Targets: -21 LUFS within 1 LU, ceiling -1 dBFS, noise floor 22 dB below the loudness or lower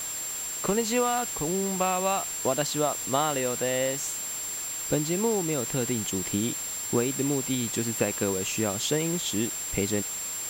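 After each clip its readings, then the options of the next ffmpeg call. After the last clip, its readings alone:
steady tone 7.4 kHz; tone level -32 dBFS; noise floor -34 dBFS; noise floor target -49 dBFS; loudness -27.0 LUFS; peak level -11.0 dBFS; loudness target -21.0 LUFS
-> -af "bandreject=f=7400:w=30"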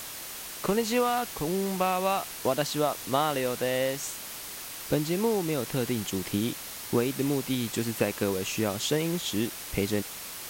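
steady tone not found; noise floor -40 dBFS; noise floor target -51 dBFS
-> -af "afftdn=nr=11:nf=-40"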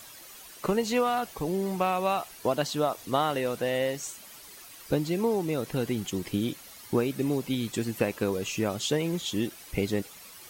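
noise floor -48 dBFS; noise floor target -52 dBFS
-> -af "afftdn=nr=6:nf=-48"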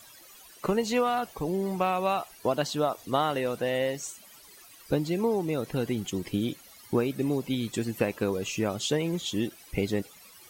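noise floor -52 dBFS; loudness -29.5 LUFS; peak level -12.0 dBFS; loudness target -21.0 LUFS
-> -af "volume=2.66"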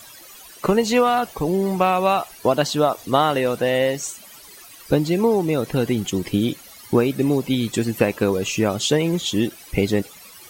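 loudness -21.0 LUFS; peak level -3.5 dBFS; noise floor -44 dBFS

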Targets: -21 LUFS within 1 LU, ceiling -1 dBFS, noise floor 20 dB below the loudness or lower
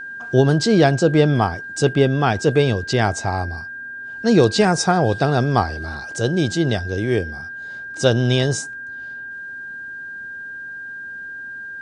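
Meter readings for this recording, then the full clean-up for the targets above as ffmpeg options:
steady tone 1.6 kHz; tone level -30 dBFS; loudness -18.5 LUFS; peak level -1.5 dBFS; loudness target -21.0 LUFS
-> -af "bandreject=f=1600:w=30"
-af "volume=0.75"

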